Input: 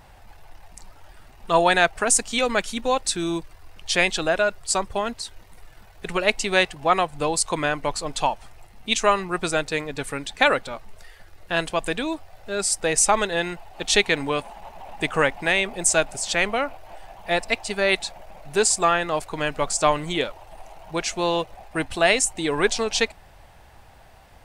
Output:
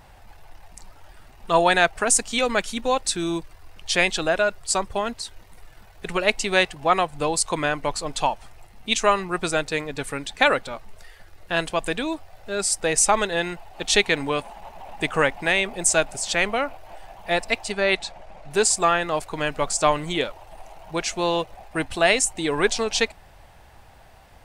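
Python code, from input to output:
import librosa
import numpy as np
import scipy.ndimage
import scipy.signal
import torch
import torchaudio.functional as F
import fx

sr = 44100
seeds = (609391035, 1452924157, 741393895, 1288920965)

y = fx.air_absorb(x, sr, metres=50.0, at=(17.72, 18.51))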